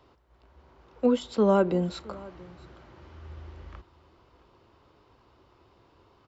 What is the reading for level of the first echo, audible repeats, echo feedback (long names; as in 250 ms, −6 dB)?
−22.0 dB, 1, repeats not evenly spaced